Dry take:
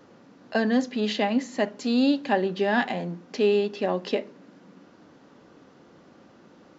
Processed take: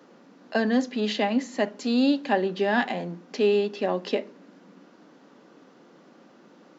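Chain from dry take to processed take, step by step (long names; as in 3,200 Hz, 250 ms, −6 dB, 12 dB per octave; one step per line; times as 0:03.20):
high-pass filter 170 Hz 24 dB per octave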